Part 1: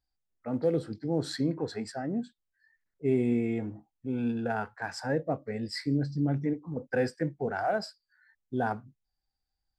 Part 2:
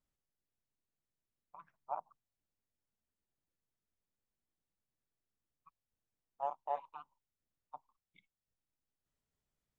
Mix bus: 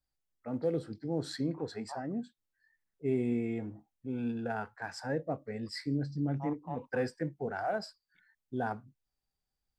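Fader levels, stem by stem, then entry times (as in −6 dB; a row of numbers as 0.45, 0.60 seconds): −4.5, −4.5 decibels; 0.00, 0.00 seconds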